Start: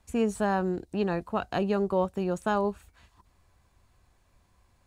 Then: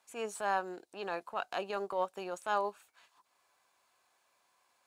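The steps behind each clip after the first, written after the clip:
high-pass filter 660 Hz 12 dB per octave
notch filter 1,900 Hz, Q 15
transient designer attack −7 dB, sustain −3 dB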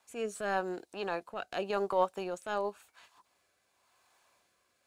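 low-shelf EQ 130 Hz +9 dB
rotating-speaker cabinet horn 0.9 Hz
level +5 dB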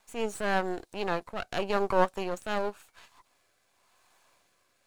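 gain on one half-wave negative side −12 dB
level +7 dB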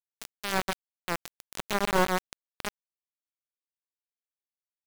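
single-tap delay 134 ms −3.5 dB
centre clipping without the shift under −18.5 dBFS
buffer that repeats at 0:02.49, samples 512, times 8

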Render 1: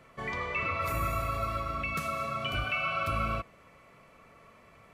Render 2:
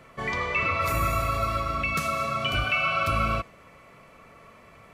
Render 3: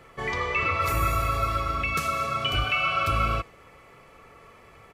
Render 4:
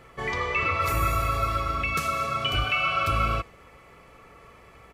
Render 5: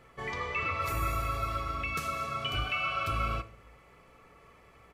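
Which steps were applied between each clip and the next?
dynamic equaliser 5,600 Hz, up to +4 dB, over −51 dBFS, Q 0.85; level +5.5 dB
comb filter 2.4 ms, depth 41%
mains hum 60 Hz, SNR 33 dB
convolution reverb RT60 0.60 s, pre-delay 7 ms, DRR 12 dB; level −7 dB

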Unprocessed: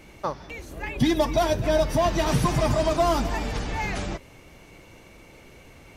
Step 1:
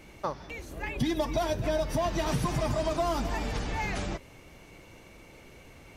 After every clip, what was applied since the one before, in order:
downward compressor 2.5 to 1, threshold −24 dBFS, peak gain reduction 6 dB
level −2.5 dB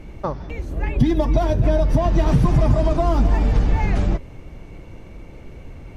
spectral tilt −3 dB per octave
level +5 dB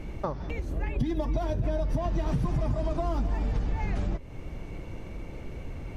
downward compressor 2.5 to 1, threshold −30 dBFS, peak gain reduction 13 dB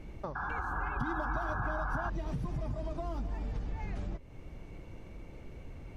sound drawn into the spectrogram noise, 0:00.35–0:02.10, 720–1,700 Hz −29 dBFS
level −8.5 dB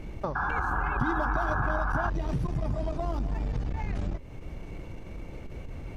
saturating transformer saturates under 160 Hz
level +8 dB

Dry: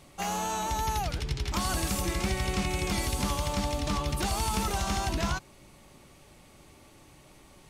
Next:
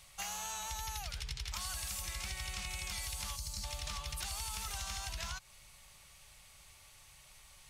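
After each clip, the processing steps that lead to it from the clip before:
gain on a spectral selection 0:03.36–0:03.64, 380–3,900 Hz −13 dB
guitar amp tone stack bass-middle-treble 10-0-10
downward compressor, threshold −40 dBFS, peak gain reduction 9 dB
level +2.5 dB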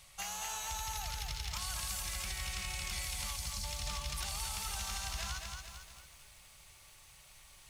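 feedback echo at a low word length 225 ms, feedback 55%, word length 10 bits, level −4 dB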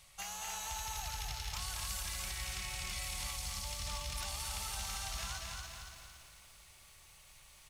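repeating echo 283 ms, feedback 38%, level −5 dB
level −2.5 dB

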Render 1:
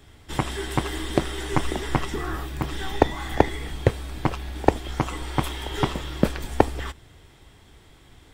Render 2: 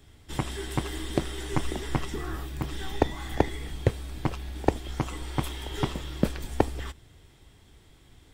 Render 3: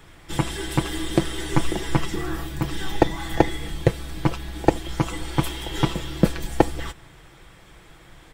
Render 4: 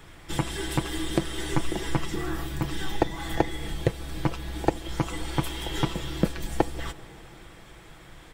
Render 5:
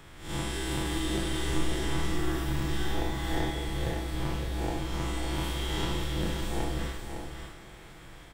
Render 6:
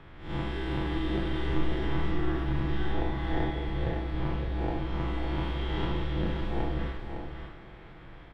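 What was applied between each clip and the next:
parametric band 1,100 Hz −4.5 dB 2.8 octaves; level −3 dB
comb filter 6 ms; noise in a band 300–2,300 Hz −60 dBFS; level +5 dB
downward compressor 1.5 to 1, threshold −29 dBFS, peak gain reduction 7.5 dB; convolution reverb RT60 4.5 s, pre-delay 113 ms, DRR 19 dB
spectrum smeared in time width 143 ms; double-tracking delay 44 ms −11.5 dB; single-tap delay 559 ms −6.5 dB
high-frequency loss of the air 350 metres; level +1.5 dB

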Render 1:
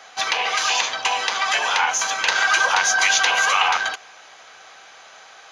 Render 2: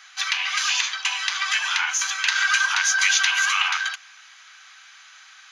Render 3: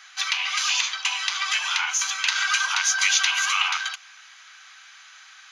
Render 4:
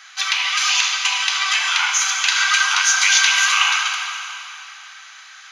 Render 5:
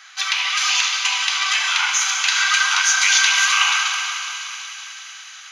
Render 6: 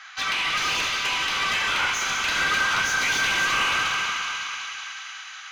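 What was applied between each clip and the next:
high-pass filter 1,300 Hz 24 dB per octave; level −1 dB
dynamic equaliser 1,700 Hz, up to −7 dB, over −38 dBFS, Q 4.1
dense smooth reverb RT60 2.9 s, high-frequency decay 0.9×, DRR 1.5 dB; level +4 dB
feedback echo with a high-pass in the loop 185 ms, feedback 83%, high-pass 990 Hz, level −12.5 dB; level −1 dB
mid-hump overdrive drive 21 dB, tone 1,500 Hz, clips at −1.5 dBFS; level −9 dB

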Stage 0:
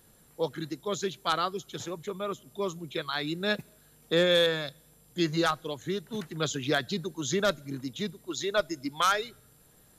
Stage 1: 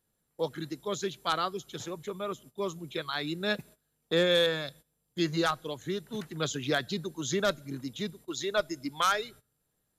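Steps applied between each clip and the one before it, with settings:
noise gate −49 dBFS, range −17 dB
level −1.5 dB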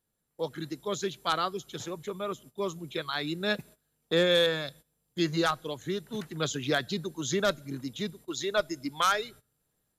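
automatic gain control gain up to 4.5 dB
level −3.5 dB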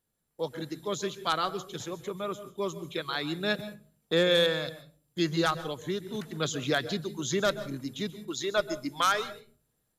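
convolution reverb RT60 0.35 s, pre-delay 127 ms, DRR 14 dB

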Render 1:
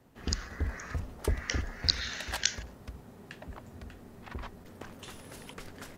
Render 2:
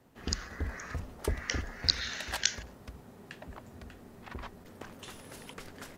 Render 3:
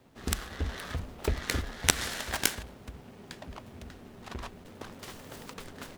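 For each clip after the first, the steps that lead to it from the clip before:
low-shelf EQ 140 Hz −4 dB
short delay modulated by noise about 1,700 Hz, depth 0.075 ms; level +2.5 dB

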